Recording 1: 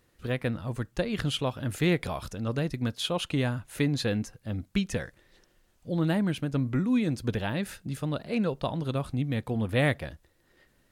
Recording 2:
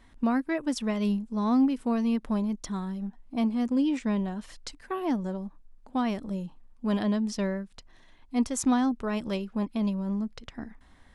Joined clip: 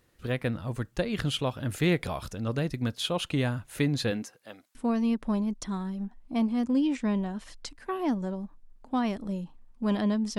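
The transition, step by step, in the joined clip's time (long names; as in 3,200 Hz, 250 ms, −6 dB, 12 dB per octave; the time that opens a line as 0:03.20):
recording 1
0:04.10–0:04.75: high-pass filter 180 Hz → 1,100 Hz
0:04.75: continue with recording 2 from 0:01.77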